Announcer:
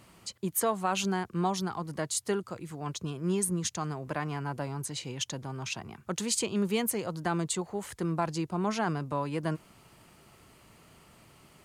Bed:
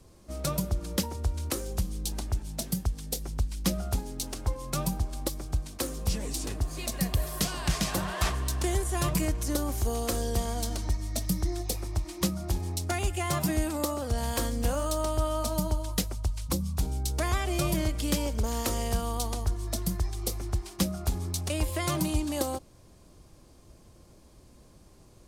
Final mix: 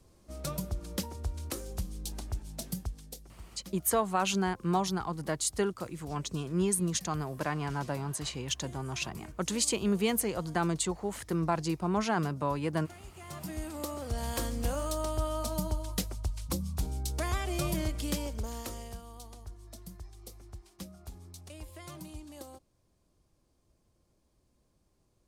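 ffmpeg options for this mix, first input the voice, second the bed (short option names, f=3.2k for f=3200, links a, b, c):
-filter_complex "[0:a]adelay=3300,volume=0.5dB[a];[1:a]volume=11dB,afade=t=out:st=2.72:d=0.63:silence=0.177828,afade=t=in:st=13.13:d=1.17:silence=0.141254,afade=t=out:st=17.96:d=1.06:silence=0.223872[b];[a][b]amix=inputs=2:normalize=0"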